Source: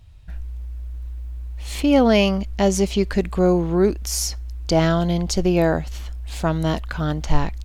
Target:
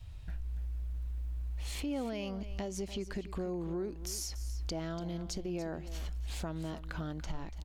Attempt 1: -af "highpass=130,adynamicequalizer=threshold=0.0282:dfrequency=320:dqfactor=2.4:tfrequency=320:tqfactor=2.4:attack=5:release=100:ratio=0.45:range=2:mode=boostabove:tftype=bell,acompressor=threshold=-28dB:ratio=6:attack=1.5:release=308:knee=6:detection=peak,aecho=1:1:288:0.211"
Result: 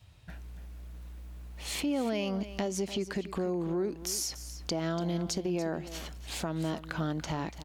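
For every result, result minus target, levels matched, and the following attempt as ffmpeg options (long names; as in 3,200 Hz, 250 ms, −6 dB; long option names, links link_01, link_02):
downward compressor: peak gain reduction −6 dB; 125 Hz band −3.5 dB
-af "highpass=130,adynamicequalizer=threshold=0.0282:dfrequency=320:dqfactor=2.4:tfrequency=320:tqfactor=2.4:attack=5:release=100:ratio=0.45:range=2:mode=boostabove:tftype=bell,acompressor=threshold=-34.5dB:ratio=6:attack=1.5:release=308:knee=6:detection=peak,aecho=1:1:288:0.211"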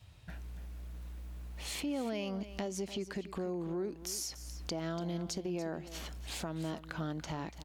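125 Hz band −2.5 dB
-af "adynamicequalizer=threshold=0.0282:dfrequency=320:dqfactor=2.4:tfrequency=320:tqfactor=2.4:attack=5:release=100:ratio=0.45:range=2:mode=boostabove:tftype=bell,acompressor=threshold=-34.5dB:ratio=6:attack=1.5:release=308:knee=6:detection=peak,aecho=1:1:288:0.211"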